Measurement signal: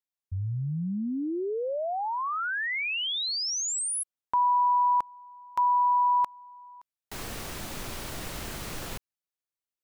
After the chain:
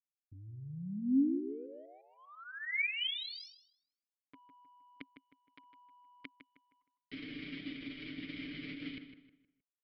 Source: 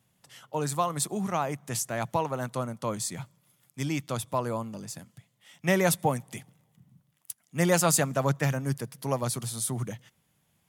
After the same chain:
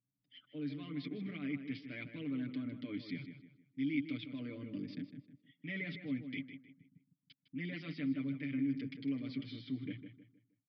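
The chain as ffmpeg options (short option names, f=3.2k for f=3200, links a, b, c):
-filter_complex "[0:a]anlmdn=0.0398,lowshelf=f=85:g=8.5,aecho=1:1:6.8:0.85,adynamicequalizer=threshold=0.00447:dfrequency=2100:dqfactor=4.8:tfrequency=2100:tqfactor=4.8:attack=5:release=100:ratio=0.375:range=3:mode=boostabove:tftype=bell,areverse,acompressor=threshold=-38dB:ratio=5:attack=5.4:release=64:knee=1:detection=peak,areverse,asplit=3[a][b][c];[a]bandpass=f=270:t=q:w=8,volume=0dB[d];[b]bandpass=f=2.29k:t=q:w=8,volume=-6dB[e];[c]bandpass=f=3.01k:t=q:w=8,volume=-9dB[f];[d][e][f]amix=inputs=3:normalize=0,asplit=2[g][h];[h]adelay=156,lowpass=f=3.1k:p=1,volume=-9dB,asplit=2[i][j];[j]adelay=156,lowpass=f=3.1k:p=1,volume=0.36,asplit=2[k][l];[l]adelay=156,lowpass=f=3.1k:p=1,volume=0.36,asplit=2[m][n];[n]adelay=156,lowpass=f=3.1k:p=1,volume=0.36[o];[g][i][k][m][o]amix=inputs=5:normalize=0,aresample=11025,aresample=44100,volume=12dB"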